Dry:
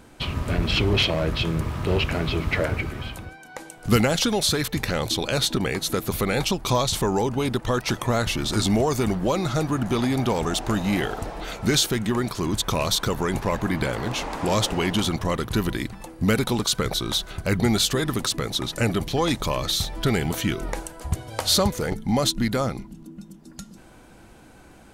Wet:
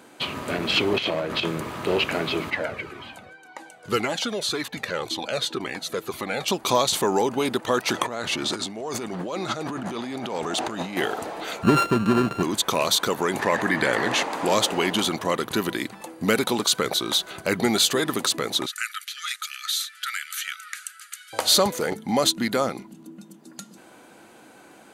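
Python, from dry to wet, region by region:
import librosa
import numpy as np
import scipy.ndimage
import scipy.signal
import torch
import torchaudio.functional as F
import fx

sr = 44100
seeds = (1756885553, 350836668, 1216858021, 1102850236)

y = fx.chain(x, sr, fx.high_shelf(hz=5800.0, db=-5.5),
    fx.over_compress(threshold_db=-25.0, ratio=-0.5), at=(0.98, 1.48))
y = fx.chain(y, sr, fx.high_shelf(hz=9000.0, db=-12.0),
    fx.comb_cascade(direction='falling', hz=1.9), at=(2.5, 6.48))
y = fx.chain(y, sr, fx.peak_eq(hz=14000.0, db=-13.0, octaves=0.68),
    fx.over_compress(threshold_db=-29.0, ratio=-1.0), at=(7.93, 10.97))
y = fx.chain(y, sr, fx.sample_sort(block=32),
    fx.riaa(side='playback'), at=(11.63, 12.43))
y = fx.chain(y, sr, fx.lowpass(hz=11000.0, slope=12),
    fx.peak_eq(hz=1800.0, db=12.0, octaves=0.21),
    fx.env_flatten(amount_pct=50), at=(13.39, 14.23))
y = fx.chain(y, sr, fx.dynamic_eq(hz=3700.0, q=0.7, threshold_db=-35.0, ratio=4.0, max_db=-4),
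    fx.brickwall_bandpass(low_hz=1200.0, high_hz=14000.0), at=(18.66, 21.33))
y = scipy.signal.sosfilt(scipy.signal.butter(2, 270.0, 'highpass', fs=sr, output='sos'), y)
y = fx.notch(y, sr, hz=5400.0, q=12.0)
y = y * librosa.db_to_amplitude(2.5)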